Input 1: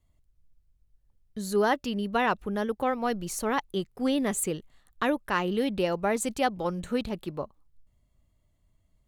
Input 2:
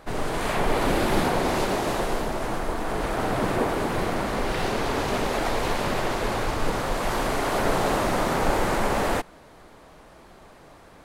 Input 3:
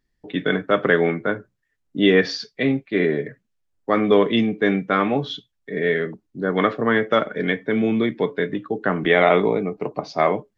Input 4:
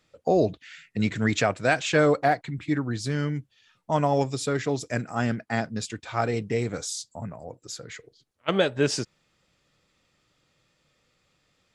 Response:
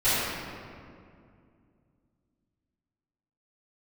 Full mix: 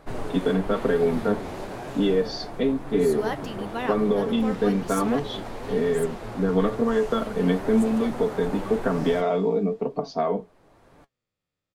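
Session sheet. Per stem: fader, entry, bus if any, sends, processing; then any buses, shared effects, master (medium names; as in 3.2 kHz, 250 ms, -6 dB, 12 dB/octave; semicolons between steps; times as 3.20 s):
5.08 s -1 dB -> 5.47 s -11 dB, 1.60 s, no send, tilt EQ +2 dB/octave
+1.0 dB, 0.00 s, no send, auto duck -9 dB, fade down 0.55 s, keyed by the third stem
+1.0 dB, 0.00 s, no send, peaking EQ 2 kHz -11.5 dB 0.58 oct; comb 4.4 ms, depth 86%; compression, threshold -18 dBFS, peak gain reduction 10.5 dB
-12.0 dB, 0.10 s, no send, spectral blur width 193 ms; decay stretcher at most 29 dB/s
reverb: none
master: flange 1 Hz, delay 6.6 ms, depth 4.8 ms, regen +59%; tilt shelf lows +3 dB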